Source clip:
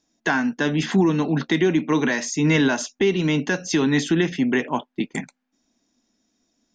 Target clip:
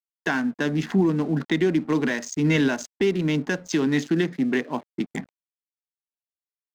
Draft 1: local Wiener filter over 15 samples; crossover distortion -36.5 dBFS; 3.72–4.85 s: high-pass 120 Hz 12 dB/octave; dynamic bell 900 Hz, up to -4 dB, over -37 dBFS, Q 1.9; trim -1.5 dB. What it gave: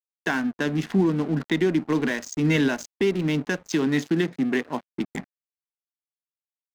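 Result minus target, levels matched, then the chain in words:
crossover distortion: distortion +9 dB
local Wiener filter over 15 samples; crossover distortion -46.5 dBFS; 3.72–4.85 s: high-pass 120 Hz 12 dB/octave; dynamic bell 900 Hz, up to -4 dB, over -37 dBFS, Q 1.9; trim -1.5 dB

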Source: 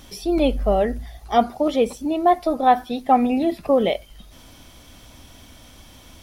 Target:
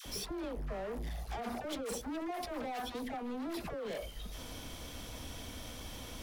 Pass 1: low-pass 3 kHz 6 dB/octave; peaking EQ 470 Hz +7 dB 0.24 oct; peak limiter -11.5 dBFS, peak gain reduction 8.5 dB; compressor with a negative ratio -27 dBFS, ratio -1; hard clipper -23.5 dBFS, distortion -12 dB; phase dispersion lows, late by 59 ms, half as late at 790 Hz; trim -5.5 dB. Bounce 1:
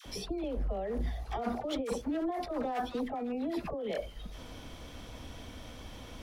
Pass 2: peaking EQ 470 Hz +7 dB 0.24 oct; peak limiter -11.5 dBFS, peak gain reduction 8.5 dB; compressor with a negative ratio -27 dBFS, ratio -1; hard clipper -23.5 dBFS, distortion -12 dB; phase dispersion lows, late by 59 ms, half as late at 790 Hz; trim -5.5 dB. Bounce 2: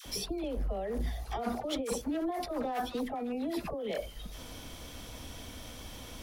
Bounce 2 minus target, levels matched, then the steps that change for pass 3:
hard clipper: distortion -7 dB
change: hard clipper -32 dBFS, distortion -5 dB

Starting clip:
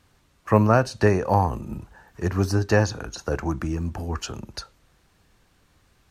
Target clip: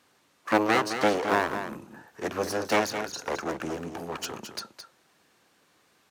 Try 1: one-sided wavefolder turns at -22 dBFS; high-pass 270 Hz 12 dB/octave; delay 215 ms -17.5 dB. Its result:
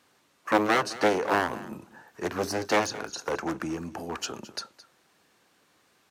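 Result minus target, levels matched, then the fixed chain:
one-sided wavefolder: distortion -16 dB; echo-to-direct -8.5 dB
one-sided wavefolder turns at -29 dBFS; high-pass 270 Hz 12 dB/octave; delay 215 ms -9 dB

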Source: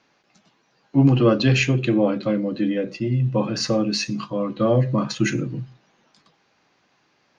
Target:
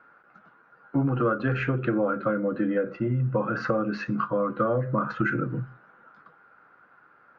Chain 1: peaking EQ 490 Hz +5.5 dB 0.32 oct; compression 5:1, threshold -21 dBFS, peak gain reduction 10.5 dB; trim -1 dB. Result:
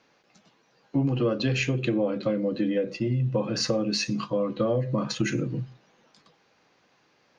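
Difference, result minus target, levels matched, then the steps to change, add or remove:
1 kHz band -8.0 dB
add first: resonant low-pass 1.4 kHz, resonance Q 12

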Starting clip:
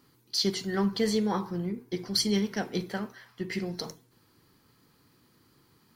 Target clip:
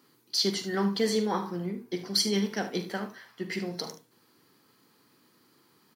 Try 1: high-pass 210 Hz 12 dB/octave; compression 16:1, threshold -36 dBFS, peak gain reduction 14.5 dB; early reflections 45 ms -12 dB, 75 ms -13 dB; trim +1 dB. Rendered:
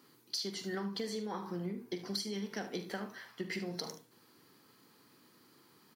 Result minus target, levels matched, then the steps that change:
compression: peak gain reduction +14.5 dB
remove: compression 16:1, threshold -36 dBFS, peak gain reduction 14.5 dB

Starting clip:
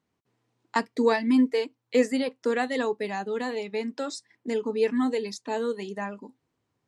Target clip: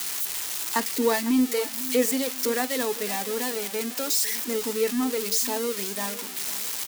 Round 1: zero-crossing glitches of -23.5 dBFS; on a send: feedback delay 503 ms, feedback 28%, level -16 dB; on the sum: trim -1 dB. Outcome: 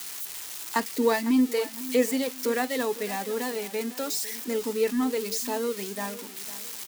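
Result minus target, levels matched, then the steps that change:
zero-crossing glitches: distortion -7 dB
change: zero-crossing glitches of -16.5 dBFS

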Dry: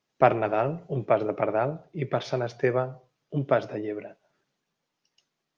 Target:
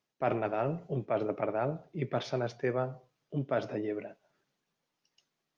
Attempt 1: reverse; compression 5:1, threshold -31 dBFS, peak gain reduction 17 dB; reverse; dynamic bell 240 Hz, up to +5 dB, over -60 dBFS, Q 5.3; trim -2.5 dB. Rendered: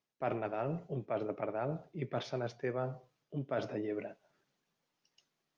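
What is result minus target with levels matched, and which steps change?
compression: peak gain reduction +5 dB
change: compression 5:1, threshold -24.5 dBFS, peak gain reduction 11.5 dB

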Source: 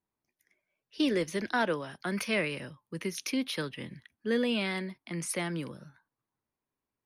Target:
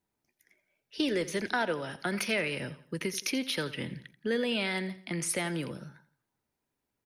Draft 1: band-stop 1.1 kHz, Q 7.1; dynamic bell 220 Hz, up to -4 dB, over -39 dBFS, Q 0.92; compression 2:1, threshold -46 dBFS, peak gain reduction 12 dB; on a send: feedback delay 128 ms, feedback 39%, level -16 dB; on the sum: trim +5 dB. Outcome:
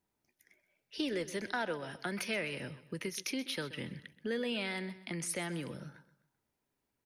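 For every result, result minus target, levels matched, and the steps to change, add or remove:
echo 43 ms late; compression: peak gain reduction +6 dB
change: feedback delay 85 ms, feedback 39%, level -16 dB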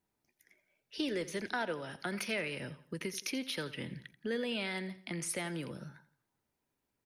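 compression: peak gain reduction +6 dB
change: compression 2:1, threshold -34.5 dBFS, peak gain reduction 6 dB

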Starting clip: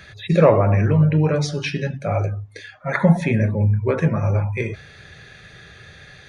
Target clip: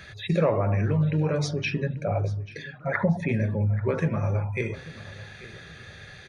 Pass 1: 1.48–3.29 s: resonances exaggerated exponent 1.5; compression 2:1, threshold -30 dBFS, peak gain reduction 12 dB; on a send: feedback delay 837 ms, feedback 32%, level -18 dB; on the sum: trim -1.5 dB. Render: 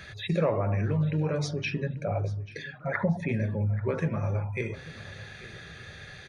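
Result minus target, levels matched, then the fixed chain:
compression: peak gain reduction +3 dB
1.48–3.29 s: resonances exaggerated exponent 1.5; compression 2:1, threshold -23.5 dBFS, peak gain reduction 8.5 dB; on a send: feedback delay 837 ms, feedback 32%, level -18 dB; on the sum: trim -1.5 dB

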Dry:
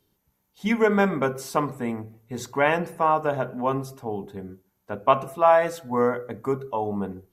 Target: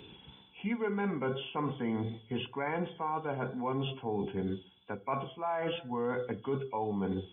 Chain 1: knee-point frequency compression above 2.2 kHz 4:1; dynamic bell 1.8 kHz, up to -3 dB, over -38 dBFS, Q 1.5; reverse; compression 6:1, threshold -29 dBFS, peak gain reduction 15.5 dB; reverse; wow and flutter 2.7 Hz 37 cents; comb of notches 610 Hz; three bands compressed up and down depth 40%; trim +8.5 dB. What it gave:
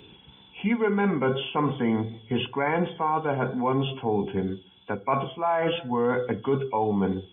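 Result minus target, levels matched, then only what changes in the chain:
compression: peak gain reduction -9 dB
change: compression 6:1, threshold -40 dBFS, peak gain reduction 24.5 dB

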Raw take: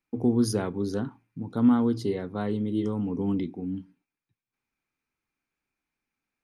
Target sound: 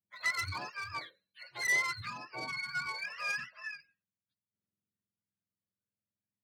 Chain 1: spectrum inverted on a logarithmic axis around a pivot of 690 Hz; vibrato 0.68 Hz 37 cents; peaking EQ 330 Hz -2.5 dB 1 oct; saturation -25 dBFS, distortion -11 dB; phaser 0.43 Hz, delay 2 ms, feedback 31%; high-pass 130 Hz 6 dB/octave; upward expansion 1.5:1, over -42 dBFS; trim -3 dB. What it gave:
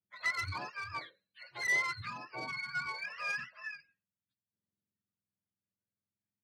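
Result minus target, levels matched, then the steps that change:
8 kHz band -4.0 dB
add after high-pass: treble shelf 5.9 kHz +9.5 dB

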